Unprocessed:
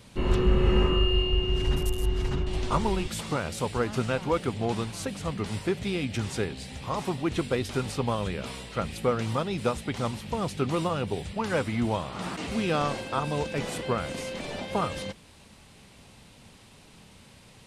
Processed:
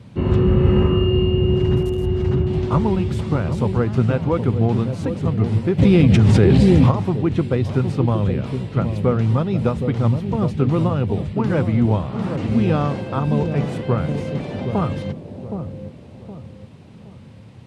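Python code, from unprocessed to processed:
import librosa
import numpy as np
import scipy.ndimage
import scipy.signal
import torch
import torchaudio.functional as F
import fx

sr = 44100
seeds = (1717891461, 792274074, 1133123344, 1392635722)

y = scipy.signal.sosfilt(scipy.signal.butter(4, 90.0, 'highpass', fs=sr, output='sos'), x)
y = fx.riaa(y, sr, side='playback')
y = fx.echo_wet_lowpass(y, sr, ms=768, feedback_pct=35, hz=630.0, wet_db=-6)
y = fx.env_flatten(y, sr, amount_pct=100, at=(5.78, 6.9), fade=0.02)
y = y * 10.0 ** (2.5 / 20.0)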